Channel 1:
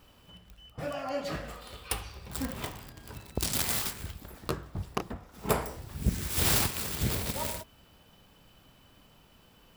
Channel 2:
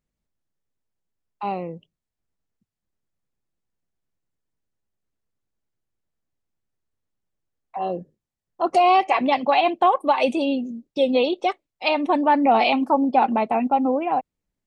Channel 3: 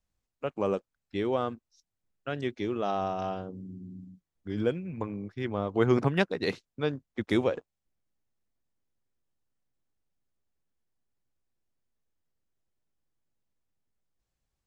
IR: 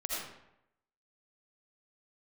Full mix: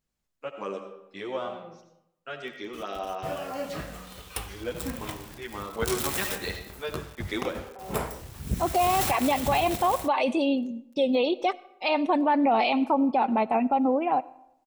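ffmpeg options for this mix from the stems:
-filter_complex "[0:a]bandreject=f=4.7k:w=12,acrusher=bits=7:mix=0:aa=0.000001,adelay=2450,volume=0dB[a];[1:a]volume=-2.5dB,asplit=2[b][c];[c]volume=-23.5dB[d];[2:a]highpass=f=830:p=1,asplit=2[e][f];[f]adelay=10.1,afreqshift=-0.38[g];[e][g]amix=inputs=2:normalize=1,volume=1dB,asplit=3[h][i][j];[i]volume=-6.5dB[k];[j]apad=whole_len=646511[l];[b][l]sidechaincompress=threshold=-54dB:ratio=8:attack=16:release=749[m];[3:a]atrim=start_sample=2205[n];[d][k]amix=inputs=2:normalize=0[o];[o][n]afir=irnorm=-1:irlink=0[p];[a][m][h][p]amix=inputs=4:normalize=0,alimiter=limit=-15dB:level=0:latency=1:release=43"

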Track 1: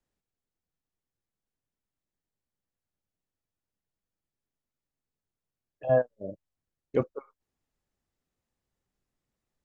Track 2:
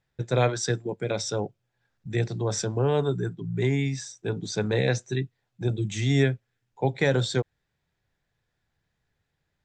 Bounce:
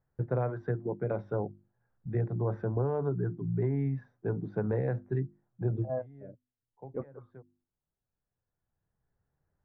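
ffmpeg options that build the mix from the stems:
-filter_complex "[0:a]volume=-11.5dB,asplit=2[a][b];[1:a]bandreject=f=50:t=h:w=6,bandreject=f=100:t=h:w=6,bandreject=f=150:t=h:w=6,bandreject=f=200:t=h:w=6,bandreject=f=250:t=h:w=6,bandreject=f=300:t=h:w=6,bandreject=f=350:t=h:w=6,acompressor=threshold=-25dB:ratio=5,volume=-2dB[c];[b]apad=whole_len=425233[d];[c][d]sidechaincompress=threshold=-58dB:ratio=4:attack=7.3:release=1300[e];[a][e]amix=inputs=2:normalize=0,lowpass=f=1.4k:w=0.5412,lowpass=f=1.4k:w=1.3066,lowshelf=f=160:g=3.5"

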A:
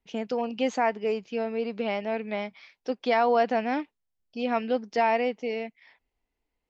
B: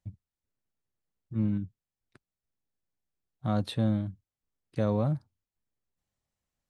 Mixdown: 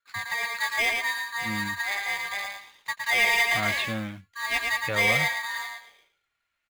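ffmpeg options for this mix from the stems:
-filter_complex "[0:a]aeval=exprs='val(0)*sgn(sin(2*PI*1400*n/s))':c=same,volume=-4dB,asplit=2[a][b];[b]volume=-4dB[c];[1:a]equalizer=f=1.8k:w=0.45:g=13.5,acrusher=bits=6:mode=log:mix=0:aa=0.000001,adelay=100,volume=-3.5dB[d];[c]aecho=0:1:113|226|339|452:1|0.25|0.0625|0.0156[e];[a][d][e]amix=inputs=3:normalize=0,flanger=delay=0.6:depth=3.6:regen=-59:speed=0.36:shape=triangular,equalizer=f=2.4k:w=1.3:g=12.5"

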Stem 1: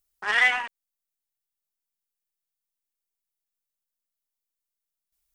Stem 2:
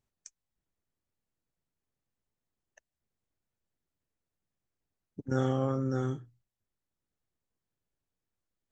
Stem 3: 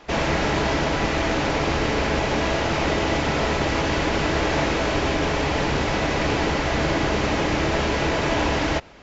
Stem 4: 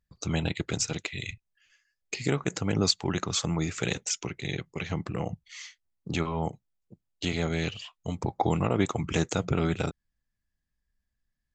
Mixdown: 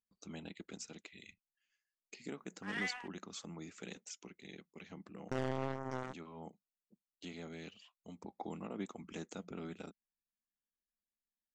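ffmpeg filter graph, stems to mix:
-filter_complex "[0:a]adelay=2400,volume=-19dB[a];[1:a]acrusher=bits=3:mix=0:aa=0.5,volume=0dB[b];[3:a]lowshelf=f=160:t=q:w=3:g=-8.5,volume=-19dB[c];[a][b][c]amix=inputs=3:normalize=0,alimiter=level_in=1.5dB:limit=-24dB:level=0:latency=1:release=429,volume=-1.5dB"

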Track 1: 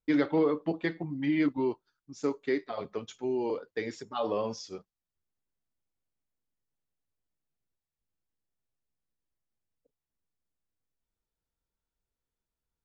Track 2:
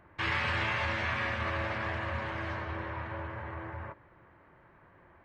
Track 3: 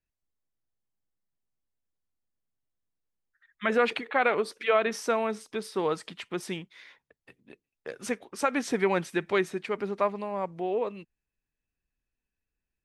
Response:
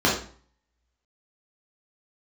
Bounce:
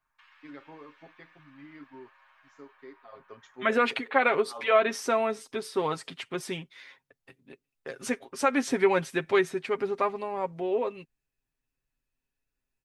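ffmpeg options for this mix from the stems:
-filter_complex "[0:a]equalizer=f=1.2k:w=0.88:g=8.5,adelay=350,volume=-12dB,afade=t=in:st=3:d=0.6:silence=0.266073[a];[1:a]highpass=f=900:w=0.5412,highpass=f=900:w=1.3066,bandreject=f=2k:w=14,acompressor=threshold=-40dB:ratio=6,volume=-19dB[b];[2:a]volume=0dB,asplit=2[c][d];[d]apad=whole_len=581871[e];[a][e]sidechaincompress=threshold=-42dB:ratio=8:attack=16:release=142[f];[f][b][c]amix=inputs=3:normalize=0,aecho=1:1:7.5:0.59"

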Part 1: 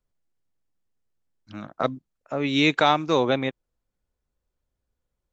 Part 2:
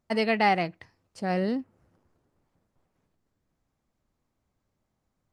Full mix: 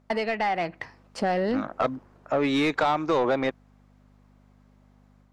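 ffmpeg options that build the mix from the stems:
-filter_complex "[0:a]equalizer=f=2.9k:t=o:w=0.75:g=-7,acompressor=threshold=-22dB:ratio=6,volume=-5.5dB[a];[1:a]acompressor=threshold=-31dB:ratio=16,aeval=exprs='val(0)+0.001*(sin(2*PI*50*n/s)+sin(2*PI*2*50*n/s)/2+sin(2*PI*3*50*n/s)/3+sin(2*PI*4*50*n/s)/4+sin(2*PI*5*50*n/s)/5)':c=same,volume=1dB[b];[a][b]amix=inputs=2:normalize=0,dynaudnorm=f=400:g=3:m=4.5dB,asplit=2[c][d];[d]highpass=f=720:p=1,volume=19dB,asoftclip=type=tanh:threshold=-12.5dB[e];[c][e]amix=inputs=2:normalize=0,lowpass=f=1.7k:p=1,volume=-6dB"

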